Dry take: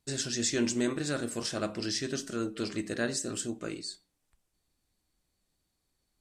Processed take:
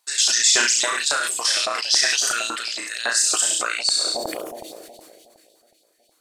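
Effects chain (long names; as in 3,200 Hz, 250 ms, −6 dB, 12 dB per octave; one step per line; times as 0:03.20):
reverb reduction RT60 0.81 s
on a send: flutter between parallel walls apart 5.9 metres, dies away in 0.52 s
on the sum: auto-filter high-pass saw up 3.6 Hz 770–4,000 Hz
in parallel at −1.5 dB: output level in coarse steps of 17 dB
on the sum: high-shelf EQ 3,600 Hz +7 dB
bucket-brigade delay 367 ms, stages 2,048, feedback 74%, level −13 dB
level that may fall only so fast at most 24 dB per second
level +3.5 dB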